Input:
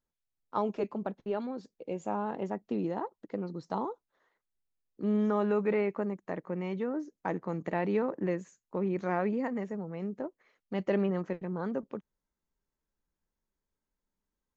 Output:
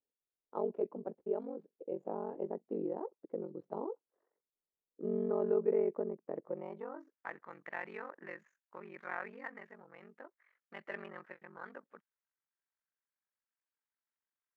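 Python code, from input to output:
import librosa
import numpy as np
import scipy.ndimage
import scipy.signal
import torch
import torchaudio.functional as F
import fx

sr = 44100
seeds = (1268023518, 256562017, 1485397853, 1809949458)

y = scipy.ndimage.median_filter(x, 9, mode='constant')
y = y * np.sin(2.0 * np.pi * 23.0 * np.arange(len(y)) / sr)
y = fx.filter_sweep_bandpass(y, sr, from_hz=440.0, to_hz=1700.0, start_s=6.39, end_s=7.25, q=2.0)
y = y * librosa.db_to_amplitude(2.5)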